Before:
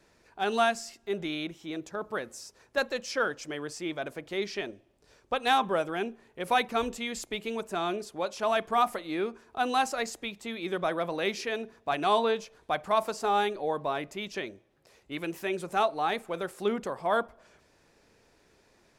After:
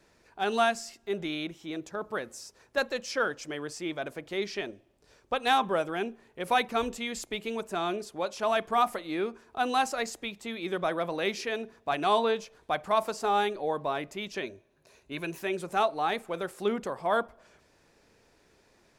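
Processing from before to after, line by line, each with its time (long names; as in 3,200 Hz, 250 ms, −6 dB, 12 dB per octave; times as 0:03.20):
0:14.42–0:15.38: EQ curve with evenly spaced ripples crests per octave 1.5, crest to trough 7 dB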